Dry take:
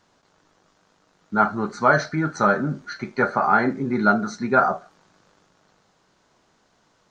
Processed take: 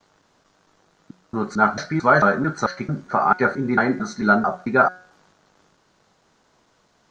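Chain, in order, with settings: slices played last to first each 222 ms, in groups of 2; de-hum 182.6 Hz, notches 39; trim +1.5 dB

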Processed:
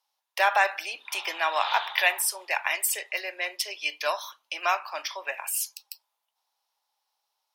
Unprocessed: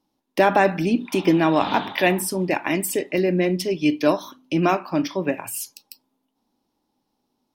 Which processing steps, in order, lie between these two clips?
Bessel high-pass 1.1 kHz, order 6; trim +1.5 dB

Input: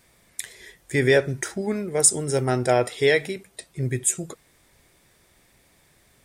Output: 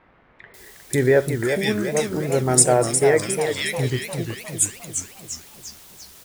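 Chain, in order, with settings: in parallel at -11 dB: word length cut 6-bit, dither triangular; on the sum: bands offset in time lows, highs 540 ms, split 2 kHz; modulated delay 353 ms, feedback 51%, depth 187 cents, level -7 dB

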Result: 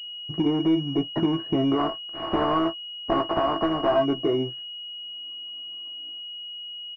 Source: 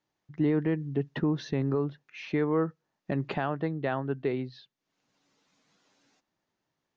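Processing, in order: 1.77–3.95 s: spectral contrast reduction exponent 0.21; distance through air 350 m; small resonant body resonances 330/660/1100 Hz, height 16 dB, ringing for 95 ms; peak limiter -16 dBFS, peak gain reduction 7 dB; compression 2:1, threshold -42 dBFS, peak gain reduction 12.5 dB; dynamic bell 940 Hz, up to +7 dB, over -53 dBFS, Q 1; waveshaping leveller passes 2; doubling 18 ms -7 dB; class-D stage that switches slowly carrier 2.9 kHz; trim +5.5 dB

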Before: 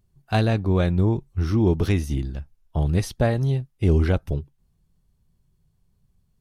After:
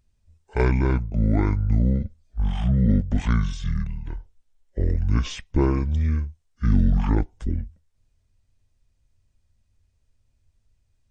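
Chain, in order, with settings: speed mistake 78 rpm record played at 45 rpm

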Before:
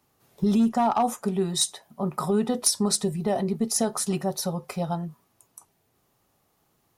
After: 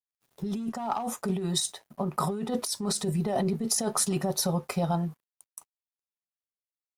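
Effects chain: compressor with a negative ratio -27 dBFS, ratio -1; crossover distortion -55 dBFS; 0.60–2.83 s: tremolo 3 Hz, depth 35%

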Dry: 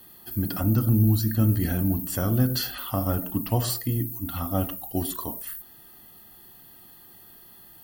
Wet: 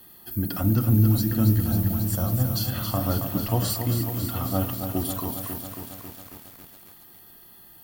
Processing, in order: 1.60–2.68 s: static phaser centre 810 Hz, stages 4; bit-crushed delay 273 ms, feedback 80%, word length 7-bit, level -7 dB

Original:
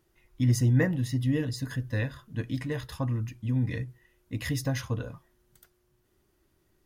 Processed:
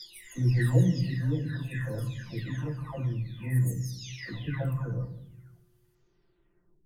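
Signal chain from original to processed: delay that grows with frequency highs early, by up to 904 ms; on a send: bass shelf 200 Hz +8 dB + reverberation RT60 0.75 s, pre-delay 3 ms, DRR 10.5 dB

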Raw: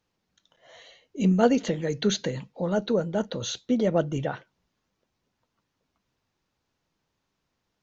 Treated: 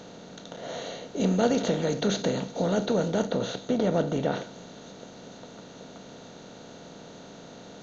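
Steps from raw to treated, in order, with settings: spectral levelling over time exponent 0.4; 3.27–4.32 s: treble shelf 4.8 kHz -11 dB; on a send: feedback echo behind a high-pass 459 ms, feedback 80%, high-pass 4.7 kHz, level -14 dB; on the sum: trim -6 dB

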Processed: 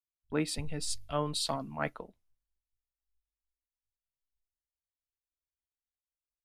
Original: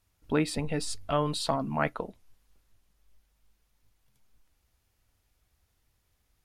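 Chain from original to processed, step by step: three bands expanded up and down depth 100%; trim -7.5 dB

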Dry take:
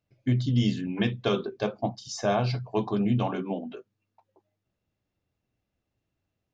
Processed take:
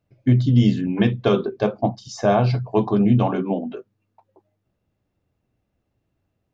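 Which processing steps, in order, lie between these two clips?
treble shelf 2 kHz -9.5 dB; trim +8.5 dB

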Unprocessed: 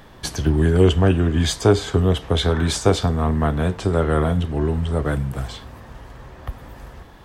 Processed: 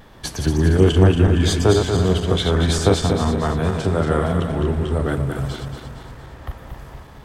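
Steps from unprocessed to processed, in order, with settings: backward echo that repeats 116 ms, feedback 71%, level -5 dB; vibrato 0.36 Hz 9.9 cents; trim -1 dB

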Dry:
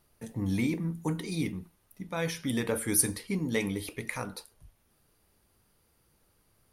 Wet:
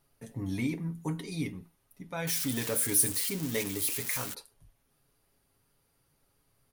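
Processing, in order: 2.27–4.34 s: zero-crossing glitches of -21.5 dBFS; comb 7.3 ms, depth 49%; trim -4 dB

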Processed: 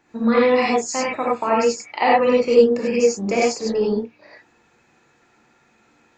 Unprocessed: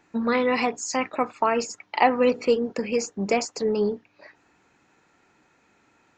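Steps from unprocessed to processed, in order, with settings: gated-style reverb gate 120 ms rising, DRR -4.5 dB; trim -2 dB

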